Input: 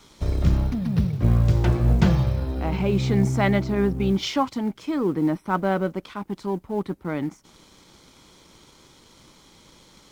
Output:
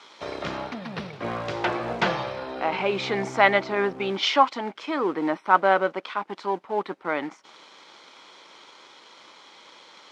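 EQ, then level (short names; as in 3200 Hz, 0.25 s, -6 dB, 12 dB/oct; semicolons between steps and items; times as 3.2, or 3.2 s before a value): BPF 630–3600 Hz; +8.0 dB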